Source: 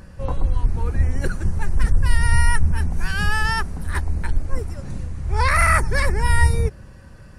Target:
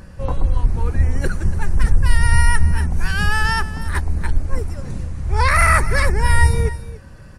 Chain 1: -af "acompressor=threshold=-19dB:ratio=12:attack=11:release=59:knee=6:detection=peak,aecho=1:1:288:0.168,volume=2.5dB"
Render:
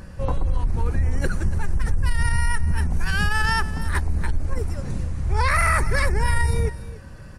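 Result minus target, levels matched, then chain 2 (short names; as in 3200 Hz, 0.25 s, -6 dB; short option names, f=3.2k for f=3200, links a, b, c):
compressor: peak gain reduction +11.5 dB
-af "aecho=1:1:288:0.168,volume=2.5dB"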